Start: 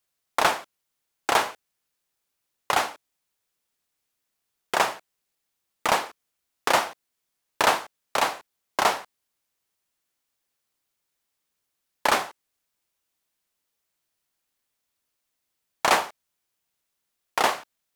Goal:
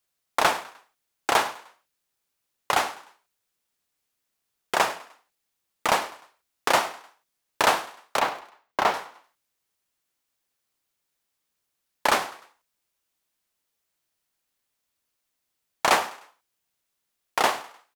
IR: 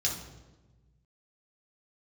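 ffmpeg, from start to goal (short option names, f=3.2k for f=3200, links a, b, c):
-filter_complex "[0:a]asettb=1/sr,asplit=3[a][b][c];[a]atrim=end=8.194[d];[b]atrim=start=8.19:end=8.94,asetpts=PTS-STARTPTS,afade=t=in:d=0.004:c=qsin,afade=t=out:st=0.746:d=0.004:c=qsin,equalizer=f=10k:t=o:w=1.9:g=-11.5[e];[c]atrim=start=8.936[f];[d][e]acrossfade=d=0.004:c1=hsin:c2=qsin[g];[g][f]acrossfade=d=0.004:c1=qsin:c2=hsin,asplit=4[h][i][j][k];[i]adelay=101,afreqshift=38,volume=-17.5dB[l];[j]adelay=202,afreqshift=76,volume=-25.5dB[m];[k]adelay=303,afreqshift=114,volume=-33.4dB[n];[h][l][m][n]amix=inputs=4:normalize=0"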